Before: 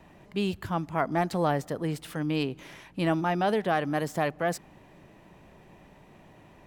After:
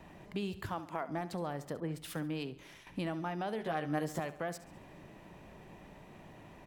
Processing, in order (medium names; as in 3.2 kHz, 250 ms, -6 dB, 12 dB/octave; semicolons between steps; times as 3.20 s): 0.69–1.09 s: high-pass 280 Hz 12 dB/octave; compression 6:1, threshold -35 dBFS, peak gain reduction 14 dB; 3.57–4.20 s: doubling 13 ms -2.5 dB; feedback delay 69 ms, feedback 50%, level -15 dB; 1.80–2.87 s: three bands expanded up and down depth 100%